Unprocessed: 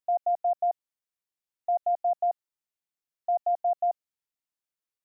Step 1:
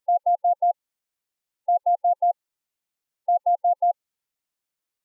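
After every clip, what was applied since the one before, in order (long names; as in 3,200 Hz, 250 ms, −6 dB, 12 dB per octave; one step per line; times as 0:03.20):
gate on every frequency bin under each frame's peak −25 dB strong
level +5.5 dB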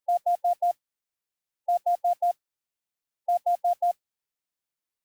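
noise that follows the level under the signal 30 dB
level −4 dB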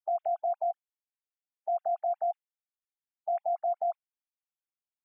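three sine waves on the formant tracks
brickwall limiter −23 dBFS, peak gain reduction 6.5 dB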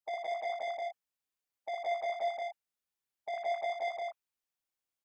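soft clipping −35 dBFS, distortion −9 dB
loudspeakers that aren't time-aligned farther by 20 metres −4 dB, 57 metres −1 dB, 68 metres −6 dB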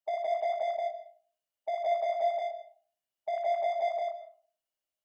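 hollow resonant body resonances 630/2,900 Hz, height 14 dB, ringing for 40 ms
convolution reverb RT60 0.45 s, pre-delay 90 ms, DRR 13 dB
level −2.5 dB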